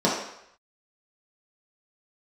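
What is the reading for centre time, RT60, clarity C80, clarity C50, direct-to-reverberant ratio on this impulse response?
48 ms, 0.75 s, 6.0 dB, 2.5 dB, -6.5 dB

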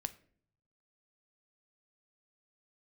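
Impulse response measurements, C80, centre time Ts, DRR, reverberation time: 22.0 dB, 3 ms, 10.5 dB, 0.55 s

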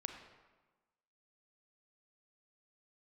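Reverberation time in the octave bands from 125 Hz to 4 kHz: 1.2, 1.3, 1.2, 1.3, 1.1, 0.85 s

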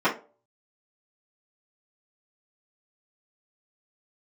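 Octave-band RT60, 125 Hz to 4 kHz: 0.35, 0.30, 0.45, 0.30, 0.25, 0.20 s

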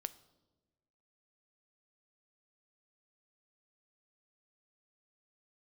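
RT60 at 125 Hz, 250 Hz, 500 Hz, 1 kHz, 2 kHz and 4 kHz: 1.5, 1.5, 1.4, 1.0, 0.75, 0.85 s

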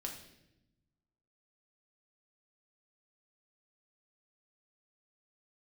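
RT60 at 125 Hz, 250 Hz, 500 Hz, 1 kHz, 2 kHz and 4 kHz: 1.7, 1.5, 1.0, 0.70, 0.85, 0.80 s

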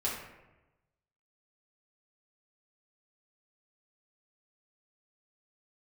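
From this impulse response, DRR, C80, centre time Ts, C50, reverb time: -6.5 dB, 5.5 dB, 49 ms, 3.0 dB, 1.0 s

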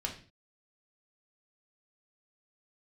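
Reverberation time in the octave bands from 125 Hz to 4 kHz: 0.50, 0.45, 0.40, 0.35, 0.40, 0.40 s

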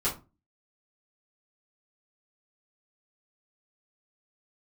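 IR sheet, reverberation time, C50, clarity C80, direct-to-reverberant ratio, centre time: 0.30 s, 10.5 dB, 18.0 dB, -9.0 dB, 21 ms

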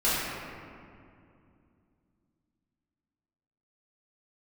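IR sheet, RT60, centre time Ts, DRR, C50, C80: 2.5 s, 0.147 s, -11.0 dB, -3.0 dB, -1.0 dB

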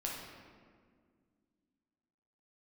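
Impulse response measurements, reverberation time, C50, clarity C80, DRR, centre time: 1.9 s, 1.0 dB, 3.0 dB, -3.5 dB, 80 ms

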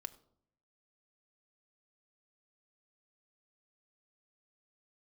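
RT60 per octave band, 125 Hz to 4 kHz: 1.0, 0.85, 0.70, 0.60, 0.40, 0.40 s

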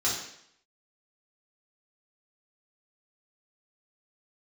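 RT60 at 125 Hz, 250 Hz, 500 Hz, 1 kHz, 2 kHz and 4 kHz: 0.65, 0.70, 0.70, 0.70, 0.70, 0.70 s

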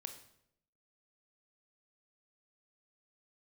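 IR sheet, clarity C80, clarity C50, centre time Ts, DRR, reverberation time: 12.5 dB, 9.5 dB, 14 ms, 6.0 dB, 0.75 s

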